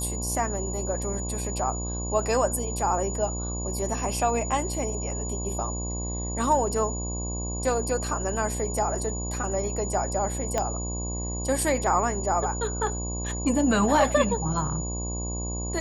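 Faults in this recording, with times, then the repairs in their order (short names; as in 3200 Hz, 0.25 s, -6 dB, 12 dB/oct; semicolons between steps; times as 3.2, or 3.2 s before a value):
buzz 60 Hz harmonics 18 -32 dBFS
tone 6900 Hz -34 dBFS
10.58 pop -12 dBFS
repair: de-click; notch 6900 Hz, Q 30; de-hum 60 Hz, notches 18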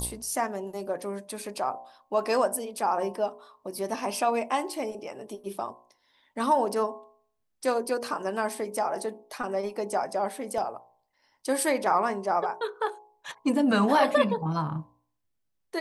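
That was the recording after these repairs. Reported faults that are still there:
10.58 pop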